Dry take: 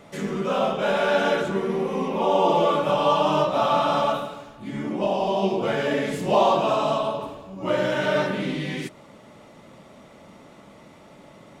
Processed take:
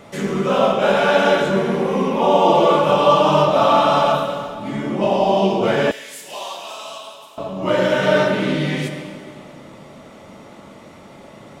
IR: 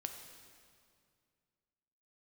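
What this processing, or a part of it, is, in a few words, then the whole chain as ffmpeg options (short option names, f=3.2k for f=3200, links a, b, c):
stairwell: -filter_complex "[1:a]atrim=start_sample=2205[a];[0:a][a]afir=irnorm=-1:irlink=0,asettb=1/sr,asplit=3[b][c][d];[b]atrim=end=5.914[e];[c]atrim=start=5.91:end=7.38,asetpts=PTS-STARTPTS,afade=t=in:d=0.004:c=qsin,afade=t=out:st=1.466:d=0.004:c=qsin,aderivative[f];[d]atrim=start=7.376[g];[e][f]acrossfade=d=0.004:c1=hsin:c2=qsin[h];[h][g]acrossfade=d=0.004:c1=qsin:c2=hsin,volume=8.5dB"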